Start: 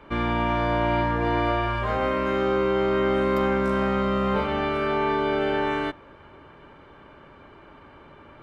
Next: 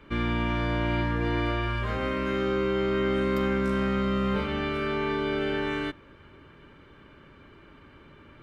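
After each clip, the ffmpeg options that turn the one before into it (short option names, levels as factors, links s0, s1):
-af "equalizer=f=770:w=1.1:g=-11.5"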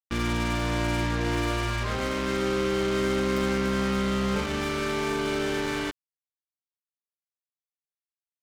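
-af "acrusher=bits=4:mix=0:aa=0.5"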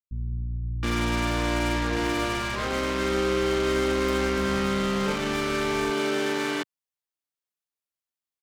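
-filter_complex "[0:a]acrossover=split=150[s0][s1];[s1]adelay=720[s2];[s0][s2]amix=inputs=2:normalize=0,volume=1.26"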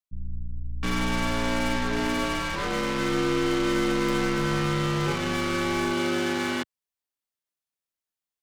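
-af "afreqshift=-46"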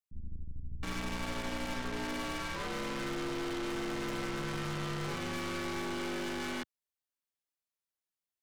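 -af "aeval=exprs='(tanh(35.5*val(0)+0.4)-tanh(0.4))/35.5':c=same,volume=0.668"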